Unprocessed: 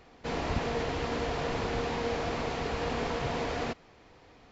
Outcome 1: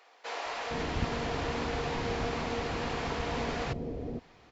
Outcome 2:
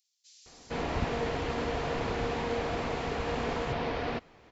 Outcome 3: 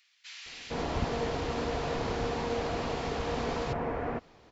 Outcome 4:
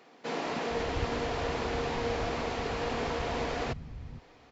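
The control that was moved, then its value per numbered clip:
bands offset in time, split: 510, 5300, 2100, 170 Hz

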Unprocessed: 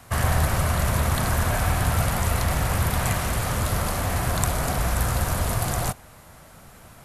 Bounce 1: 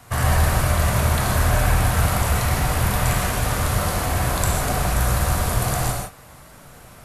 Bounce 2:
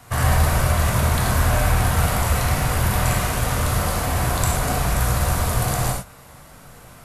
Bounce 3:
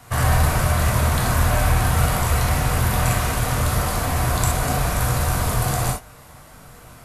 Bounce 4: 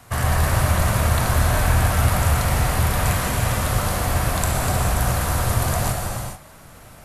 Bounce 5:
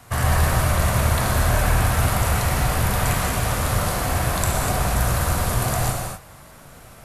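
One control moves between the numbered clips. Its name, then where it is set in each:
non-linear reverb, gate: 190, 130, 90, 470, 280 ms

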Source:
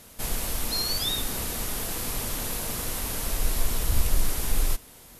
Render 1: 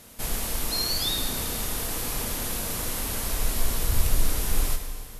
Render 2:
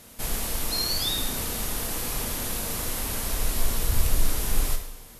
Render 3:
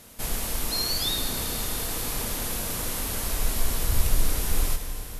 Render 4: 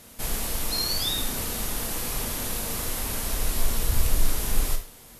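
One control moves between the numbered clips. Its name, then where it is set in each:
Schroeder reverb, RT60: 1.9, 0.82, 4.2, 0.37 s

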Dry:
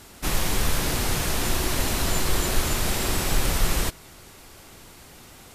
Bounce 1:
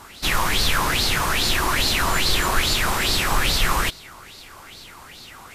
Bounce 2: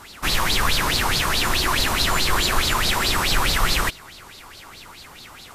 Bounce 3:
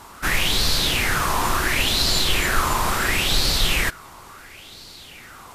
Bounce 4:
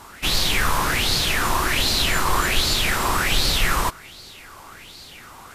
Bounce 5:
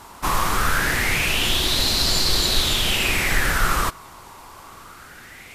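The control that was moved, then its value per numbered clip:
LFO bell, rate: 2.4, 4.7, 0.72, 1.3, 0.23 Hz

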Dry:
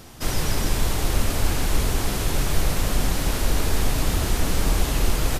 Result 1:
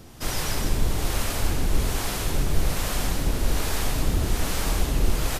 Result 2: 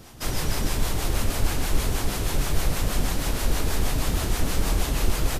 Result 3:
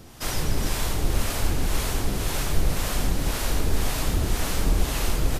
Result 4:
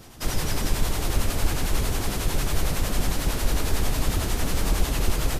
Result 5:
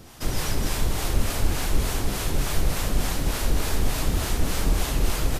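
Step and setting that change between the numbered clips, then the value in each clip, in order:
harmonic tremolo, rate: 1.2, 6.3, 1.9, 11, 3.4 Hz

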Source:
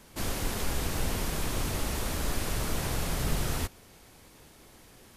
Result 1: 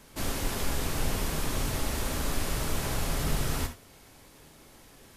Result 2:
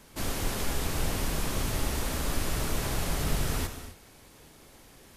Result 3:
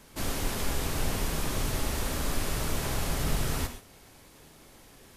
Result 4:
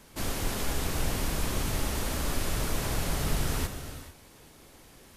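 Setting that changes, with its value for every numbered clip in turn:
non-linear reverb, gate: 0.1, 0.29, 0.16, 0.48 s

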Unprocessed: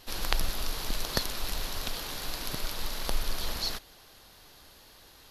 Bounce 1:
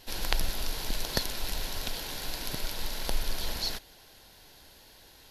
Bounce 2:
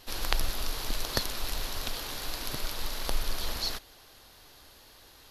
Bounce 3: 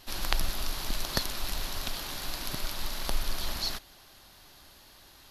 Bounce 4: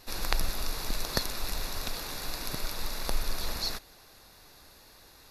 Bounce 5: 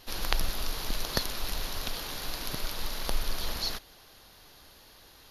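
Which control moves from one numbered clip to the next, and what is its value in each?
notch, frequency: 1200, 180, 470, 3100, 7900 Hz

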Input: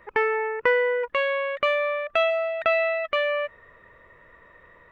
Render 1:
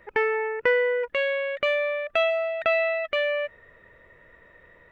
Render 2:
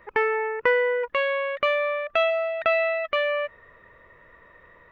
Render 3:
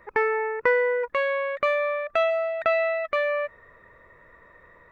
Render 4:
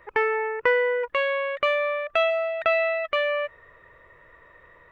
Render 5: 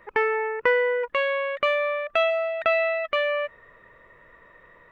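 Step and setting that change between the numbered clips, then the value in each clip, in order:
bell, frequency: 1100, 8500, 3000, 220, 74 Hz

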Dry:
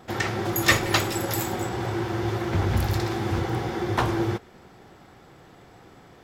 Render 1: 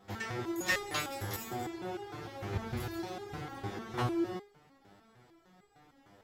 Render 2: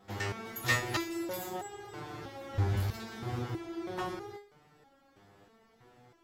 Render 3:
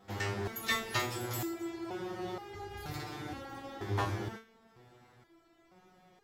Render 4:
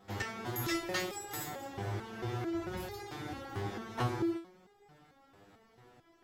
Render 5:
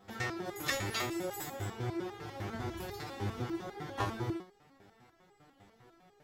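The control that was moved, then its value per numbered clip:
stepped resonator, rate: 6.6, 3.1, 2.1, 4.5, 10 Hz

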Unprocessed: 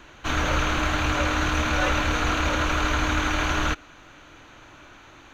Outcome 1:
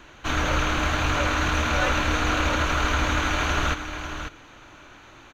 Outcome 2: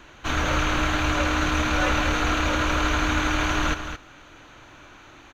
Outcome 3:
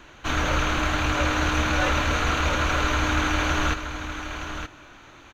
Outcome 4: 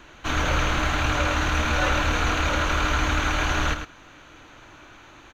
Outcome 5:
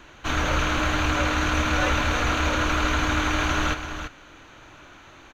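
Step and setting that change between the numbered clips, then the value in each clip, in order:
echo, time: 0.544, 0.219, 0.921, 0.106, 0.336 s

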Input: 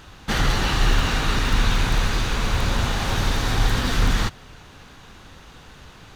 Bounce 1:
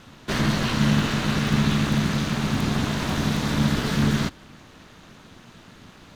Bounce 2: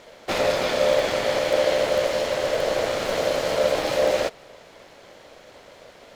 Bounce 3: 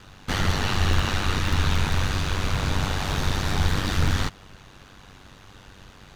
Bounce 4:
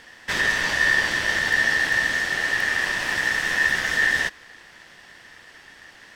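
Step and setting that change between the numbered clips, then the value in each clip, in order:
ring modulator, frequency: 180, 560, 48, 1800 Hz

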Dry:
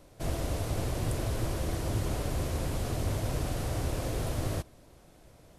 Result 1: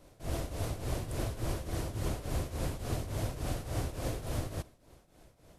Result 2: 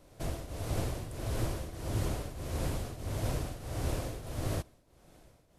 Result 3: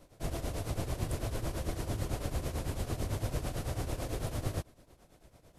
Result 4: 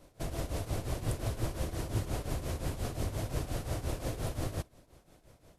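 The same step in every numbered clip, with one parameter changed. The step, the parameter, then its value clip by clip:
tremolo, rate: 3.5, 1.6, 9, 5.7 Hz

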